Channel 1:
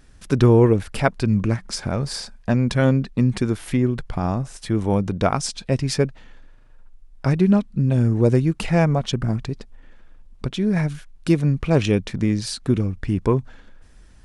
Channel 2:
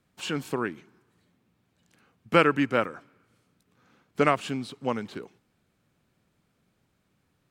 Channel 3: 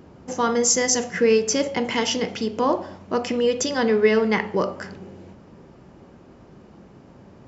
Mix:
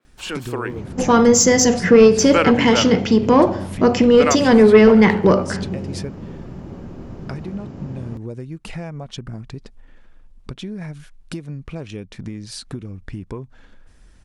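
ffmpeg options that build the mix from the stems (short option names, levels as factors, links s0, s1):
-filter_complex "[0:a]acompressor=threshold=0.0447:ratio=8,adelay=50,volume=0.398[s0];[1:a]highpass=290,volume=0.668[s1];[2:a]lowshelf=f=280:g=11.5,adelay=700,volume=0.891[s2];[s0][s1][s2]amix=inputs=3:normalize=0,acontrast=89,adynamicequalizer=threshold=0.0251:dfrequency=4800:dqfactor=0.7:tfrequency=4800:tqfactor=0.7:attack=5:release=100:ratio=0.375:range=2:mode=cutabove:tftype=highshelf"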